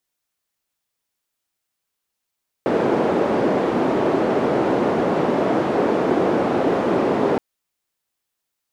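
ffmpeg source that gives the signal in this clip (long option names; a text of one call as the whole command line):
ffmpeg -f lavfi -i "anoisesrc=color=white:duration=4.72:sample_rate=44100:seed=1,highpass=frequency=300,lowpass=frequency=400,volume=7.1dB" out.wav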